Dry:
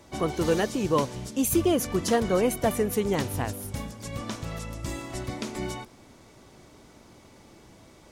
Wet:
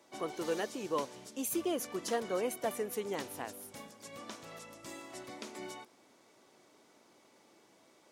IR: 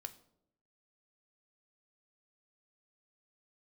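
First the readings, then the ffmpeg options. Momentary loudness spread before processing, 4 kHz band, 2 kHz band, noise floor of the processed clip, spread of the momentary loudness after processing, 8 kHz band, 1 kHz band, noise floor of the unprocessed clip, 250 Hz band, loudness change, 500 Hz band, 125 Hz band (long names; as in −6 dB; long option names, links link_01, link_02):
12 LU, −9.0 dB, −9.0 dB, −65 dBFS, 14 LU, −9.0 dB, −9.0 dB, −54 dBFS, −13.0 dB, −11.0 dB, −10.0 dB, −22.5 dB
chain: -af "highpass=310,volume=-9dB"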